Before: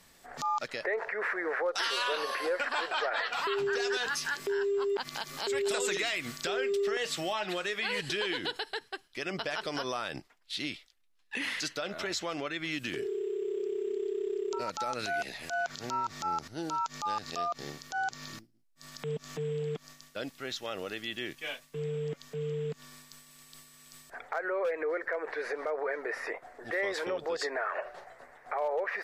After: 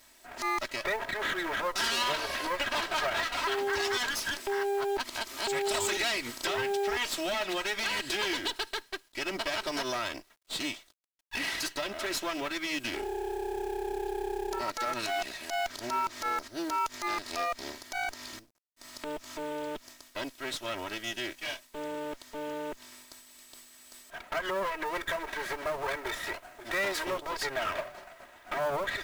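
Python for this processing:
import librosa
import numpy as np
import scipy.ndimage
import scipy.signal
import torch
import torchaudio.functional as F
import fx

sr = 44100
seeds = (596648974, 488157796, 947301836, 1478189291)

y = fx.lower_of_two(x, sr, delay_ms=3.1)
y = fx.high_shelf(y, sr, hz=9200.0, db=11.5, at=(24.87, 27.31))
y = fx.quant_companded(y, sr, bits=6)
y = fx.low_shelf(y, sr, hz=240.0, db=-6.0)
y = y * librosa.db_to_amplitude(3.0)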